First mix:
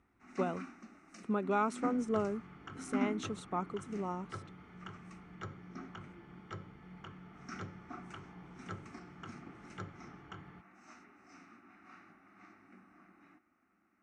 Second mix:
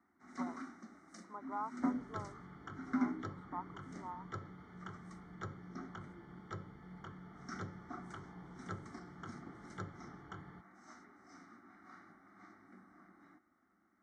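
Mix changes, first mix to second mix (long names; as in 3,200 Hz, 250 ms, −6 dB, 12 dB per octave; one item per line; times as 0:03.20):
speech: add resonant band-pass 960 Hz, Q 6.3
master: add Butterworth band-reject 2,600 Hz, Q 2.4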